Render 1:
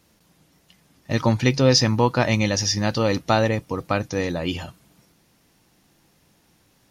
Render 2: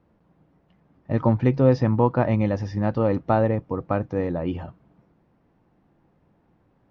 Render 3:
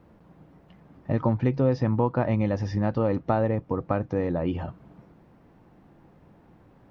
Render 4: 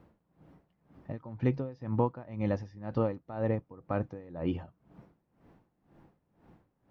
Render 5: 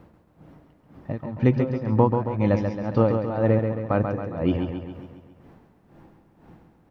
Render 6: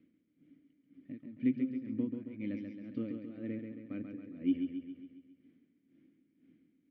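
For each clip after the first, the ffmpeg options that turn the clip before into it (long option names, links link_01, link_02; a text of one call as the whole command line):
ffmpeg -i in.wav -af "lowpass=1100" out.wav
ffmpeg -i in.wav -af "acompressor=threshold=-38dB:ratio=2,volume=8dB" out.wav
ffmpeg -i in.wav -af "aeval=exprs='val(0)*pow(10,-20*(0.5-0.5*cos(2*PI*2*n/s))/20)':channel_layout=same,volume=-3dB" out.wav
ffmpeg -i in.wav -af "aecho=1:1:136|272|408|544|680|816|952:0.501|0.281|0.157|0.088|0.0493|0.0276|0.0155,volume=9dB" out.wav
ffmpeg -i in.wav -filter_complex "[0:a]asplit=3[link_01][link_02][link_03];[link_01]bandpass=frequency=270:width_type=q:width=8,volume=0dB[link_04];[link_02]bandpass=frequency=2290:width_type=q:width=8,volume=-6dB[link_05];[link_03]bandpass=frequency=3010:width_type=q:width=8,volume=-9dB[link_06];[link_04][link_05][link_06]amix=inputs=3:normalize=0,volume=-4dB" out.wav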